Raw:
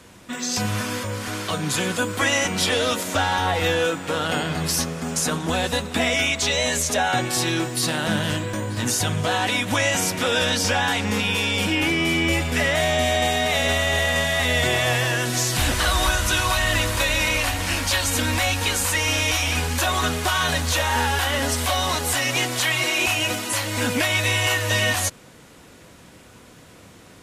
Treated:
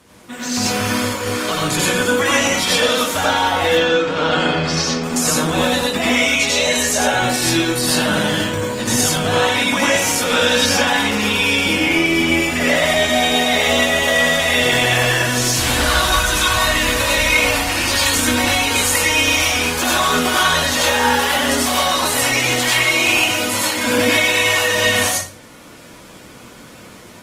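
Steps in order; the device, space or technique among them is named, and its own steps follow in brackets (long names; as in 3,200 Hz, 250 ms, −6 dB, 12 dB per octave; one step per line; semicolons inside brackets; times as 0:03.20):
0:03.66–0:05.04: low-pass filter 5,800 Hz 24 dB per octave
far-field microphone of a smart speaker (convolution reverb RT60 0.40 s, pre-delay 82 ms, DRR −4 dB; high-pass filter 93 Hz 6 dB per octave; automatic gain control gain up to 4 dB; level −1 dB; Opus 20 kbit/s 48,000 Hz)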